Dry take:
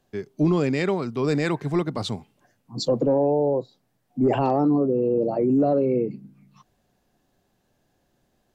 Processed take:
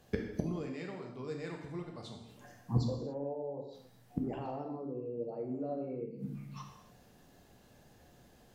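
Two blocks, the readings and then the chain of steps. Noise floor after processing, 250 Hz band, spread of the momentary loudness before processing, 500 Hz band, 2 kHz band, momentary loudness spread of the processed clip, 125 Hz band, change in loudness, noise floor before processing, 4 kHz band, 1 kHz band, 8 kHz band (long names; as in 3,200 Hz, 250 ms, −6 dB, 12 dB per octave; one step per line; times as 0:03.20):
−62 dBFS, −16.5 dB, 11 LU, −17.5 dB, −16.0 dB, 14 LU, −10.5 dB, −17.0 dB, −70 dBFS, −17.5 dB, −17.5 dB, can't be measured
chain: gate with flip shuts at −24 dBFS, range −26 dB
reverb whose tail is shaped and stops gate 310 ms falling, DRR 0.5 dB
level +5 dB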